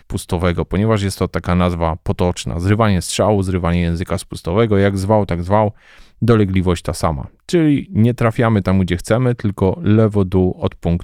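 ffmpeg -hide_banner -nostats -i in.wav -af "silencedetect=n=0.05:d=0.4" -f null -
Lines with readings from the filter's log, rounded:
silence_start: 5.70
silence_end: 6.22 | silence_duration: 0.52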